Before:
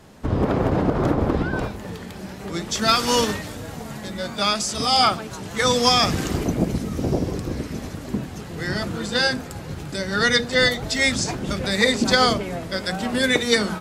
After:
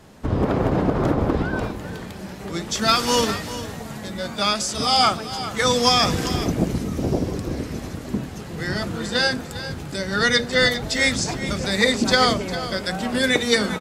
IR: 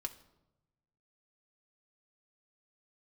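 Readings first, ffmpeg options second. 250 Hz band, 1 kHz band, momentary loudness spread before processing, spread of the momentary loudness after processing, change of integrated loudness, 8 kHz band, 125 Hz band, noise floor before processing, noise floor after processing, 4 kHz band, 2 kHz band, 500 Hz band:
0.0 dB, 0.0 dB, 15 LU, 14 LU, 0.0 dB, 0.0 dB, 0.0 dB, −36 dBFS, −35 dBFS, 0.0 dB, 0.0 dB, 0.0 dB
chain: -af "aecho=1:1:402:0.224"

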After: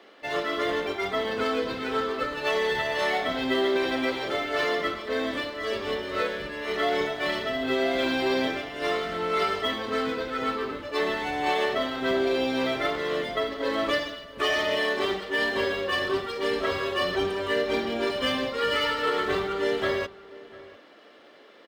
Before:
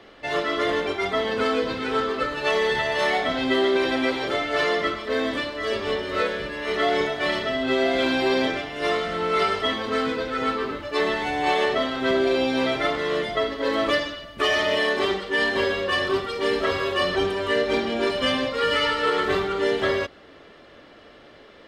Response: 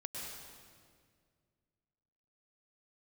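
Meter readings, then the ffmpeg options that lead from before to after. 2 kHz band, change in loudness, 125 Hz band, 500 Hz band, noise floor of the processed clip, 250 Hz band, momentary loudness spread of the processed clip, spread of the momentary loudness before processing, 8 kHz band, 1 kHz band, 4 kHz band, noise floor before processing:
−3.5 dB, −3.5 dB, −4.5 dB, −3.5 dB, −51 dBFS, −3.5 dB, 5 LU, 4 LU, −3.0 dB, −3.5 dB, −3.5 dB, −49 dBFS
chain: -filter_complex "[0:a]acrossover=split=200|2200[link_01][link_02][link_03];[link_01]aeval=exprs='sgn(val(0))*max(abs(val(0))-0.00158,0)':channel_layout=same[link_04];[link_03]acrusher=bits=5:mode=log:mix=0:aa=0.000001[link_05];[link_04][link_02][link_05]amix=inputs=3:normalize=0,asplit=2[link_06][link_07];[link_07]adelay=699.7,volume=-19dB,highshelf=frequency=4000:gain=-15.7[link_08];[link_06][link_08]amix=inputs=2:normalize=0,volume=-3.5dB"

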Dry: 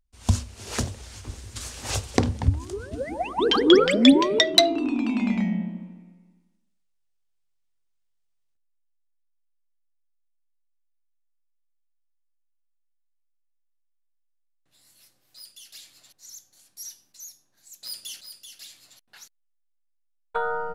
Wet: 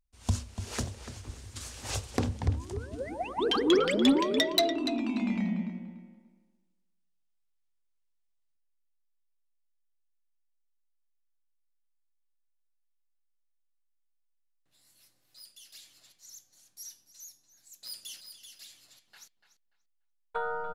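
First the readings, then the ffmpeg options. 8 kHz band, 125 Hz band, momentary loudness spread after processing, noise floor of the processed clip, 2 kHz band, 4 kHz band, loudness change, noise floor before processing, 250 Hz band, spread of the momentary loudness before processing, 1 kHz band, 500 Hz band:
−6.5 dB, −6.5 dB, 22 LU, −74 dBFS, −7.0 dB, −8.5 dB, −7.5 dB, −71 dBFS, −7.0 dB, 23 LU, −6.0 dB, −7.0 dB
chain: -filter_complex "[0:a]asplit=2[link_01][link_02];[link_02]adelay=291,lowpass=frequency=4300:poles=1,volume=-11dB,asplit=2[link_03][link_04];[link_04]adelay=291,lowpass=frequency=4300:poles=1,volume=0.22,asplit=2[link_05][link_06];[link_06]adelay=291,lowpass=frequency=4300:poles=1,volume=0.22[link_07];[link_01][link_03][link_05][link_07]amix=inputs=4:normalize=0,asoftclip=type=tanh:threshold=-9.5dB,volume=-6dB"

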